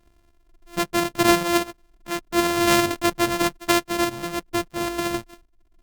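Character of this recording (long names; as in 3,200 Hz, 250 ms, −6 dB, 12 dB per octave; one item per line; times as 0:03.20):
a buzz of ramps at a fixed pitch in blocks of 128 samples
sample-and-hold tremolo
Opus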